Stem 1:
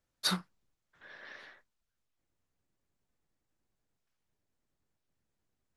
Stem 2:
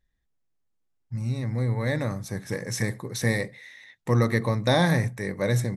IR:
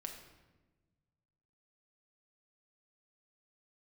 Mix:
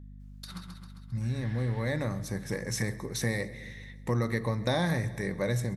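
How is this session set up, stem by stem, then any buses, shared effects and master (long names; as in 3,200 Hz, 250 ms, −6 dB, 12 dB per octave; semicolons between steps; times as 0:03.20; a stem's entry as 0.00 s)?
0.0 dB, 0.20 s, send −12 dB, echo send −7 dB, compressor whose output falls as the input rises −37 dBFS, ratio −0.5; parametric band 530 Hz −6.5 dB 1.9 octaves; automatic ducking −11 dB, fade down 0.85 s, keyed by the second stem
−3.5 dB, 0.00 s, send −8 dB, echo send −22 dB, mains hum 50 Hz, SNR 18 dB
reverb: on, RT60 1.2 s, pre-delay 5 ms
echo: repeating echo 133 ms, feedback 60%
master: downward compressor 2 to 1, threshold −28 dBFS, peak gain reduction 6 dB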